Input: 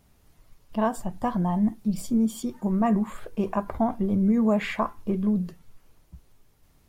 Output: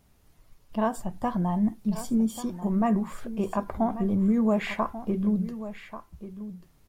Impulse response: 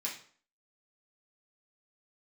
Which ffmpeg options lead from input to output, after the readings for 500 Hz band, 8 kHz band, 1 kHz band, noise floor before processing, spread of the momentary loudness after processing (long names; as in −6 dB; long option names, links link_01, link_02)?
−1.5 dB, −1.5 dB, −1.5 dB, −61 dBFS, 16 LU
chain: -af "aecho=1:1:1138:0.224,volume=-1.5dB"